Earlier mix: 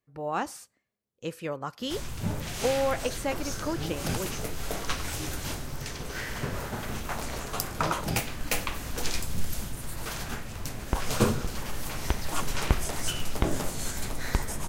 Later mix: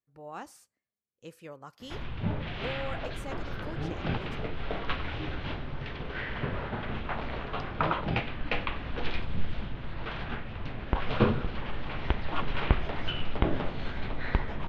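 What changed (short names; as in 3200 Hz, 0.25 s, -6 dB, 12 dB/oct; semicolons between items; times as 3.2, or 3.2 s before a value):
speech -11.5 dB; background: add steep low-pass 3500 Hz 36 dB/oct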